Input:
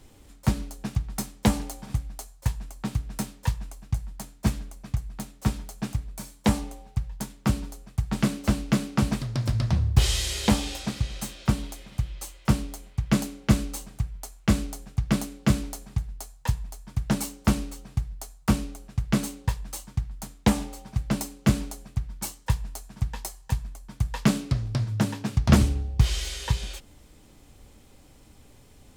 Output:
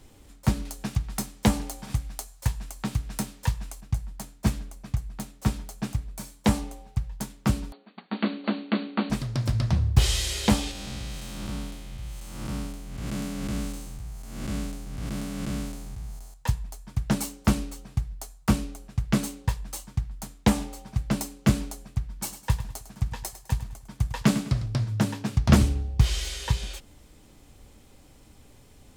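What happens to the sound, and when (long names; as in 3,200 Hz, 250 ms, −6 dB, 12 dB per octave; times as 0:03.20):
0:00.65–0:03.81: one half of a high-frequency compander encoder only
0:07.72–0:09.10: linear-phase brick-wall band-pass 190–4,600 Hz
0:10.71–0:16.34: spectrum smeared in time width 269 ms
0:22.07–0:24.66: repeating echo 103 ms, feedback 36%, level −12.5 dB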